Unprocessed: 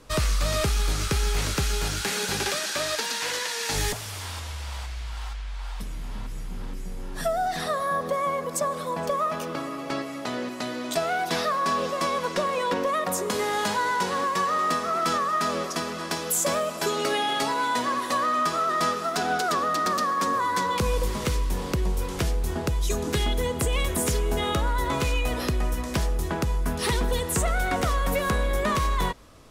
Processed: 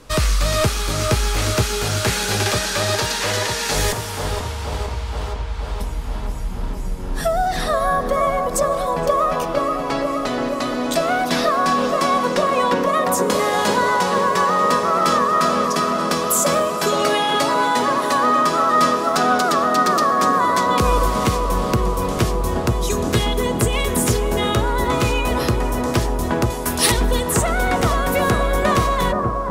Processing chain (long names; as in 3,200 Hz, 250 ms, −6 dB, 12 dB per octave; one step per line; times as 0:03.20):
0:26.50–0:26.92: spectral tilt +3 dB per octave
bucket-brigade delay 477 ms, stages 4,096, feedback 74%, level −4 dB
level +6 dB